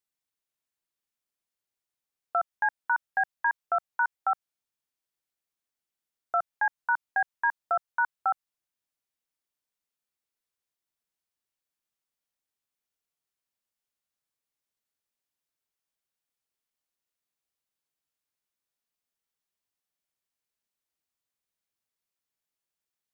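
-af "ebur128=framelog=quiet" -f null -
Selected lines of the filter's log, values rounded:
Integrated loudness:
  I:         -29.3 LUFS
  Threshold: -39.3 LUFS
Loudness range:
  LRA:         4.5 LU
  Threshold: -51.8 LUFS
  LRA low:   -34.8 LUFS
  LRA high:  -30.2 LUFS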